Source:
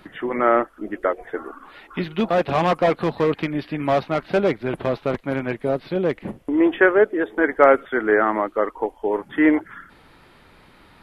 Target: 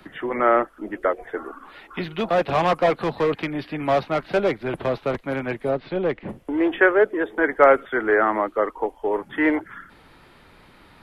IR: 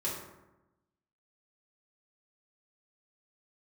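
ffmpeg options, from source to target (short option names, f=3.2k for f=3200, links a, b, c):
-filter_complex "[0:a]asplit=3[a][b][c];[a]afade=t=out:st=5.7:d=0.02[d];[b]lowpass=4k,afade=t=in:st=5.7:d=0.02,afade=t=out:st=6.28:d=0.02[e];[c]afade=t=in:st=6.28:d=0.02[f];[d][e][f]amix=inputs=3:normalize=0,acrossover=split=130|330|1000[g][h][i][j];[h]asoftclip=type=tanh:threshold=-32.5dB[k];[g][k][i][j]amix=inputs=4:normalize=0"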